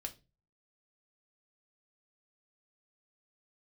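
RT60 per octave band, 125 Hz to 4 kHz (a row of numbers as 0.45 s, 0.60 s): 0.55 s, 0.40 s, 0.35 s, 0.25 s, 0.25 s, 0.25 s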